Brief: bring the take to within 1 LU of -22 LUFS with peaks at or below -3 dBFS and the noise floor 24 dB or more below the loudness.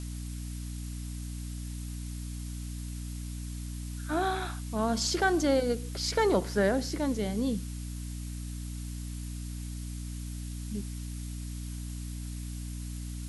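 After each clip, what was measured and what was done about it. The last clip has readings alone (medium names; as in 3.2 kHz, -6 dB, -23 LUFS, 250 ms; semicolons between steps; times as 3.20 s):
hum 60 Hz; highest harmonic 300 Hz; hum level -35 dBFS; noise floor -38 dBFS; noise floor target -58 dBFS; loudness -33.5 LUFS; peak level -13.0 dBFS; loudness target -22.0 LUFS
-> de-hum 60 Hz, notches 5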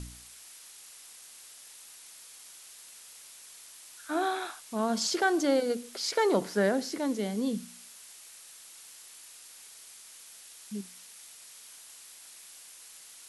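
hum not found; noise floor -51 dBFS; noise floor target -54 dBFS
-> noise reduction 6 dB, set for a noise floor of -51 dBFS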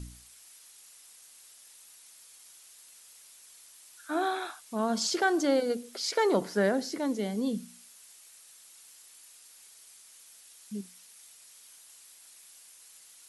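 noise floor -55 dBFS; loudness -30.0 LUFS; peak level -13.5 dBFS; loudness target -22.0 LUFS
-> trim +8 dB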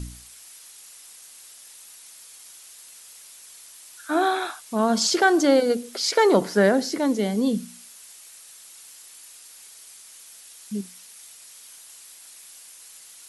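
loudness -22.0 LUFS; peak level -5.5 dBFS; noise floor -47 dBFS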